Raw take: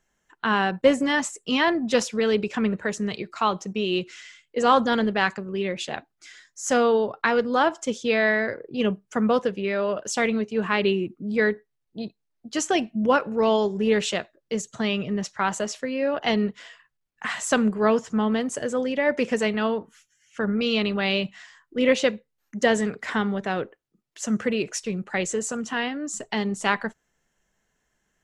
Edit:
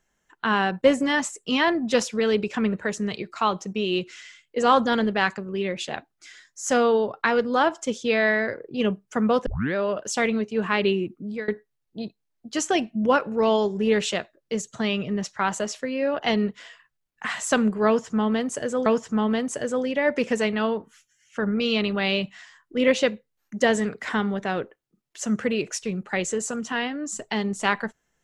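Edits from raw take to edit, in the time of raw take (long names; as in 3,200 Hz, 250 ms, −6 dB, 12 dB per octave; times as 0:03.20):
0:09.46: tape start 0.29 s
0:11.19–0:11.48: fade out, to −23 dB
0:17.87–0:18.86: repeat, 2 plays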